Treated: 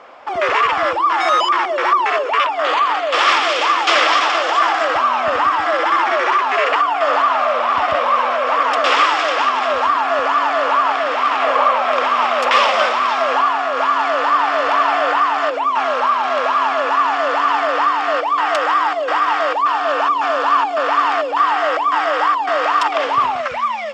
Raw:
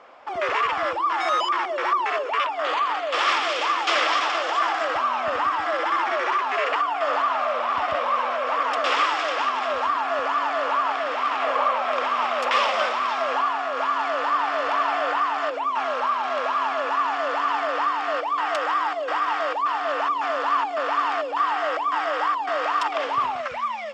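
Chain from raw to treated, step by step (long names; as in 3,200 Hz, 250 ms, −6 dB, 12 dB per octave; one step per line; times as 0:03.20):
0:19.69–0:20.84: notch filter 2,000 Hz, Q 11
level +7.5 dB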